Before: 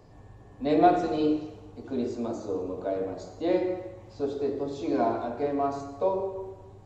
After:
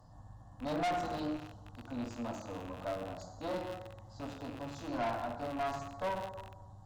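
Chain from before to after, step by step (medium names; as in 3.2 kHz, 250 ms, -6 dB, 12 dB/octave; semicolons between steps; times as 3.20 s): rattle on loud lows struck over -43 dBFS, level -24 dBFS; static phaser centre 980 Hz, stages 4; valve stage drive 31 dB, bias 0.6; trim +1 dB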